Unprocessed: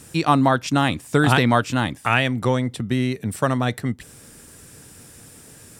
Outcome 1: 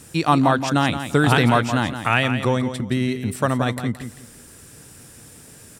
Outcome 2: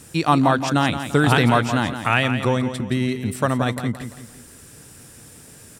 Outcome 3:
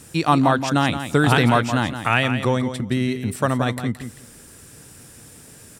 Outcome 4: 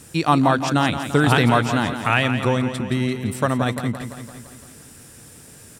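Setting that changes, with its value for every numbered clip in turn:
feedback echo, feedback: 24, 40, 16, 60%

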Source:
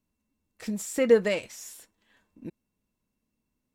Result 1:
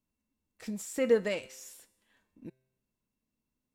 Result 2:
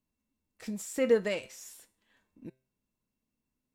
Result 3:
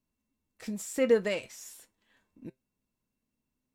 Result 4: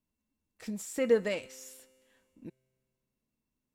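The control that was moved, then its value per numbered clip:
resonator, decay: 0.86, 0.4, 0.16, 2.1 s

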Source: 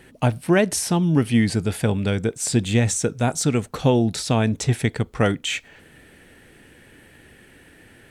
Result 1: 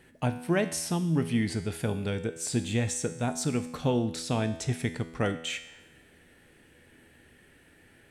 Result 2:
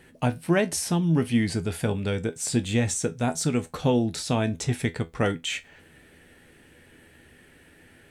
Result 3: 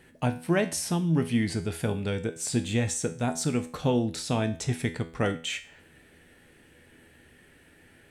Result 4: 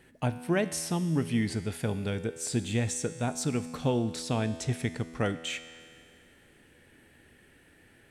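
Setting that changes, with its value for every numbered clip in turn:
resonator, decay: 0.93, 0.17, 0.43, 2.1 s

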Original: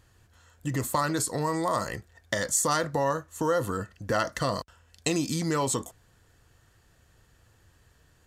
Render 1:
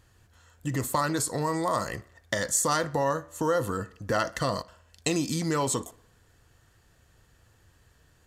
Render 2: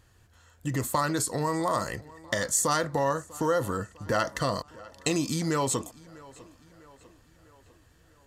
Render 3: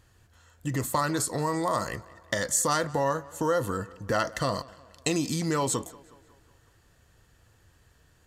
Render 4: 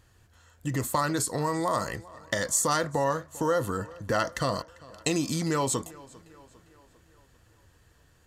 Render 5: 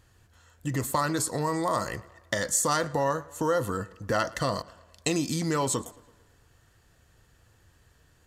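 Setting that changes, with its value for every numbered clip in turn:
tape echo, time: 61, 649, 183, 399, 113 ms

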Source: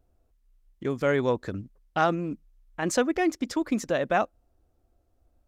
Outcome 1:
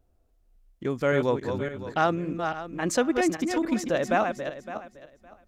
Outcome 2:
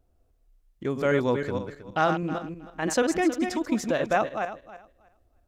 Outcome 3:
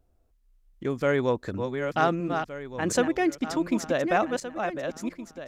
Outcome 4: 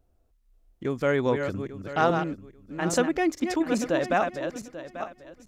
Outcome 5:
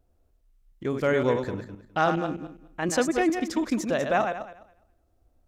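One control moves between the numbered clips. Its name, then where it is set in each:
regenerating reverse delay, time: 0.281, 0.159, 0.734, 0.42, 0.103 s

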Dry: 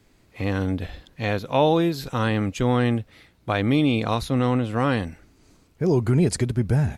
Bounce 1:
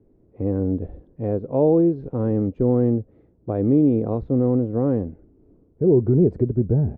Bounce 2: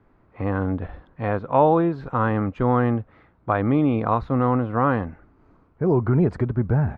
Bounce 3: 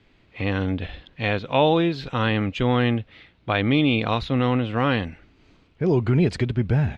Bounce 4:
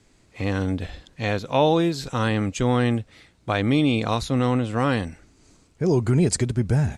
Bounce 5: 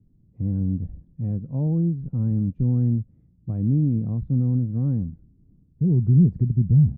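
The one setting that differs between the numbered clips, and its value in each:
synth low-pass, frequency: 430, 1200, 3100, 8000, 170 Hz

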